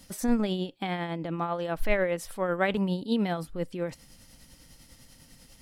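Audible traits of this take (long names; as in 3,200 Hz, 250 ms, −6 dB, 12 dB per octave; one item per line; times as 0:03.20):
tremolo triangle 10 Hz, depth 50%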